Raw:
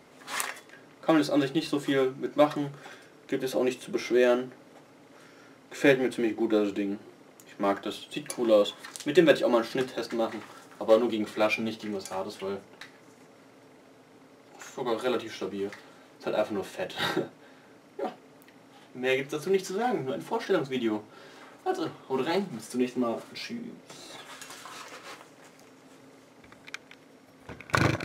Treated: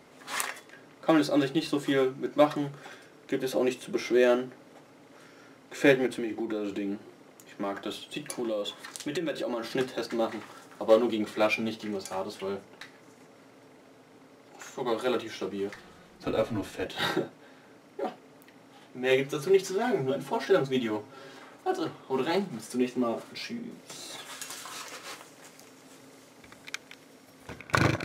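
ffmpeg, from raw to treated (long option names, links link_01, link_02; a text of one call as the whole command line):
ffmpeg -i in.wav -filter_complex "[0:a]asettb=1/sr,asplit=3[link_01][link_02][link_03];[link_01]atrim=end=6.064[link_04];[link_02]atrim=start=6.06:end=9.72,asetpts=PTS-STARTPTS,afade=type=in:duration=0.004:curve=qsin,afade=type=out:start_time=3.656:duration=0.004:curve=qsin,acompressor=threshold=-28dB:ratio=6:attack=3.2:release=140:knee=1:detection=peak[link_05];[link_03]atrim=start=9.716[link_06];[link_04][link_05]acrossfade=duration=0.004:curve1=hsin:curve2=qsin[link_07];[link_07][link_06]acrossfade=duration=0.004:curve1=qsin:curve2=hsin,asettb=1/sr,asplit=3[link_08][link_09][link_10];[link_08]atrim=end=15.744[link_11];[link_09]atrim=start=15.74:end=16.86,asetpts=PTS-STARTPTS,afade=type=in:duration=0.004:curve=qsin,afade=type=out:start_time=1.116:duration=0.004:curve=qsin,afreqshift=-90[link_12];[link_10]atrim=start=16.856[link_13];[link_11][link_12]acrossfade=duration=0.004:curve1=hsin:curve2=qsin[link_14];[link_14][link_13]acrossfade=duration=0.004:curve1=qsin:curve2=hsin,asettb=1/sr,asplit=3[link_15][link_16][link_17];[link_15]atrim=end=19.104[link_18];[link_16]atrim=start=19.1:end=21.39,asetpts=PTS-STARTPTS,afade=type=in:duration=0.004:curve=qsin,afade=type=out:start_time=2.286:duration=0.004:curve=qsin,aecho=1:1:7.4:0.65,atrim=end_sample=100989[link_19];[link_17]atrim=start=21.386[link_20];[link_18][link_19]acrossfade=duration=0.004:curve1=hsin:curve2=qsin[link_21];[link_21][link_20]acrossfade=duration=0.004:curve1=qsin:curve2=hsin,asettb=1/sr,asplit=3[link_22][link_23][link_24];[link_22]atrim=end=23.714[link_25];[link_23]atrim=start=23.71:end=27.6,asetpts=PTS-STARTPTS,afade=type=in:duration=0.004:curve=qsin,afade=type=out:start_time=3.886:duration=0.004:curve=qsin,highshelf=frequency=3800:gain=8[link_26];[link_24]atrim=start=27.596[link_27];[link_25][link_26]acrossfade=duration=0.004:curve1=hsin:curve2=qsin[link_28];[link_28][link_27]acrossfade=duration=0.004:curve1=qsin:curve2=hsin" out.wav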